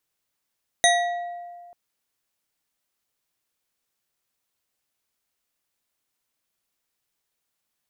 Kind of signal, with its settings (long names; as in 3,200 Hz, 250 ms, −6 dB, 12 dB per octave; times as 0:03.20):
struck glass bar, lowest mode 700 Hz, modes 5, decay 1.87 s, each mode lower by 1 dB, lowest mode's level −16.5 dB